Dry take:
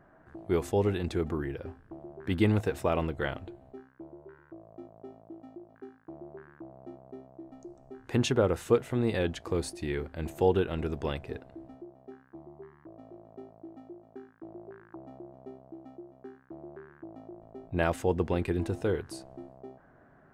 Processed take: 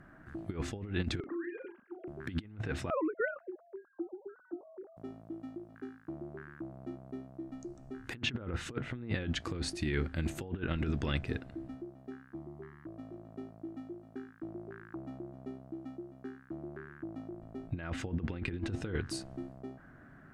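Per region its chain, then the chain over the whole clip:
1.2–2.08 sine-wave speech + compressor, threshold -39 dBFS + doubler 38 ms -8 dB
2.9–4.97 sine-wave speech + LPF 1400 Hz 24 dB/oct
whole clip: treble ducked by the level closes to 2300 Hz, closed at -22.5 dBFS; band shelf 630 Hz -9 dB; negative-ratio compressor -35 dBFS, ratio -0.5; gain +1.5 dB

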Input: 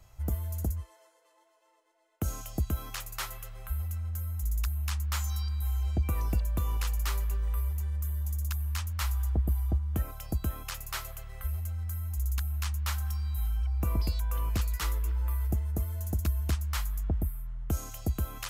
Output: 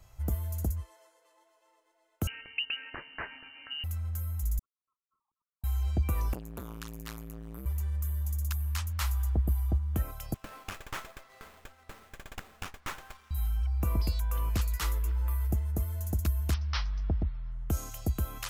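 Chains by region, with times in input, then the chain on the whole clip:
2.27–3.84 HPF 110 Hz + inverted band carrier 2900 Hz
4.59–5.64 sine-wave speech + inverse Chebyshev low-pass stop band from 1700 Hz, stop band 80 dB + ring modulator 120 Hz
6.33–7.66 low shelf 170 Hz -8.5 dB + core saturation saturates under 800 Hz
10.34–13.31 HPF 590 Hz + running maximum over 9 samples
16.54–17.52 steep low-pass 5700 Hz 96 dB/oct + high shelf 3600 Hz +7 dB
whole clip: dry

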